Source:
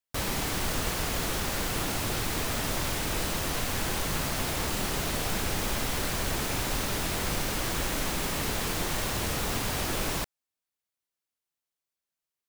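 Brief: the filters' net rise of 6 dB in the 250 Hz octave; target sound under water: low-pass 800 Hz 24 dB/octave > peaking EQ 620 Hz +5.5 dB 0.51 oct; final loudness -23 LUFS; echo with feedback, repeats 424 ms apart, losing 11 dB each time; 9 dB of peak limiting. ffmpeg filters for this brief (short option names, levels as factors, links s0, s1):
-af "equalizer=f=250:t=o:g=7.5,alimiter=level_in=1.06:limit=0.0631:level=0:latency=1,volume=0.944,lowpass=f=800:w=0.5412,lowpass=f=800:w=1.3066,equalizer=f=620:t=o:w=0.51:g=5.5,aecho=1:1:424|848|1272:0.282|0.0789|0.0221,volume=4.73"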